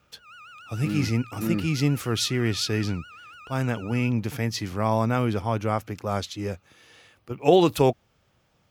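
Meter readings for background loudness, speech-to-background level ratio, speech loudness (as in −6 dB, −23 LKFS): −45.0 LKFS, 19.5 dB, −25.5 LKFS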